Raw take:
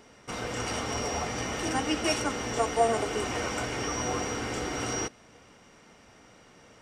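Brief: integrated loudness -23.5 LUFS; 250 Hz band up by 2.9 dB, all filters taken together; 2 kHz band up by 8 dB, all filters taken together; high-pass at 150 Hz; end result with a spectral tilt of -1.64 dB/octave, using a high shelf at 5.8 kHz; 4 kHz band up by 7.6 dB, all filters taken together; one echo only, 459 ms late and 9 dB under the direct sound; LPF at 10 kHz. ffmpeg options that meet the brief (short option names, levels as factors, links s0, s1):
-af "highpass=150,lowpass=10000,equalizer=f=250:t=o:g=4,equalizer=f=2000:t=o:g=7.5,equalizer=f=4000:t=o:g=5,highshelf=f=5800:g=8,aecho=1:1:459:0.355,volume=1.19"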